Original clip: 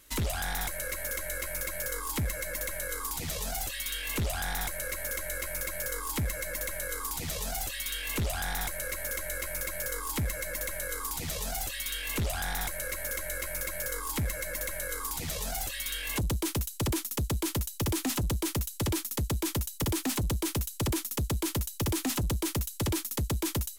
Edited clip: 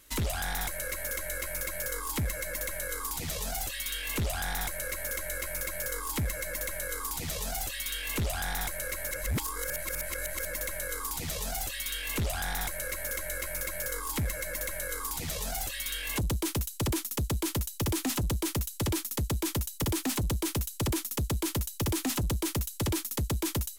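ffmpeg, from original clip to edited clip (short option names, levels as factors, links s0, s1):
-filter_complex "[0:a]asplit=3[s0][s1][s2];[s0]atrim=end=9.112[s3];[s1]atrim=start=9.108:end=10.452,asetpts=PTS-STARTPTS,areverse[s4];[s2]atrim=start=10.448[s5];[s3][s4]acrossfade=d=0.004:c1=hsin:c2=hsin[s6];[s6][s5]acrossfade=d=0.004:c1=hsin:c2=hsin"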